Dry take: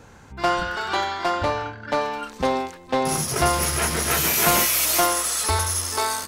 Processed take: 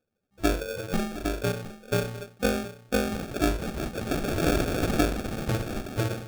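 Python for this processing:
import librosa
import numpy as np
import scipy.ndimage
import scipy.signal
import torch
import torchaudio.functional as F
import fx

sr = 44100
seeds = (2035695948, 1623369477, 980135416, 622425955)

y = fx.bin_expand(x, sr, power=2.0)
y = scipy.signal.sosfilt(scipy.signal.butter(2, 210.0, 'highpass', fs=sr, output='sos'), y)
y = fx.high_shelf(y, sr, hz=11000.0, db=-3.5)
y = fx.sample_hold(y, sr, seeds[0], rate_hz=1000.0, jitter_pct=0)
y = y + 10.0 ** (-15.5 / 20.0) * np.pad(y, (int(710 * sr / 1000.0), 0))[:len(y)]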